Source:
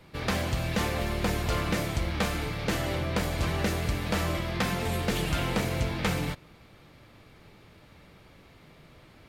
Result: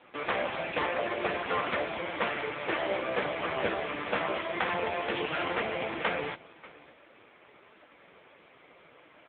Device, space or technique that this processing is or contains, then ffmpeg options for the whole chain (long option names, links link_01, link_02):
satellite phone: -filter_complex "[0:a]asplit=3[link_01][link_02][link_03];[link_01]afade=type=out:start_time=3.34:duration=0.02[link_04];[link_02]lowpass=5800,afade=type=in:start_time=3.34:duration=0.02,afade=type=out:start_time=3.99:duration=0.02[link_05];[link_03]afade=type=in:start_time=3.99:duration=0.02[link_06];[link_04][link_05][link_06]amix=inputs=3:normalize=0,highpass=400,lowpass=3400,aecho=1:1:587:0.0794,volume=7dB" -ar 8000 -c:a libopencore_amrnb -b:a 5150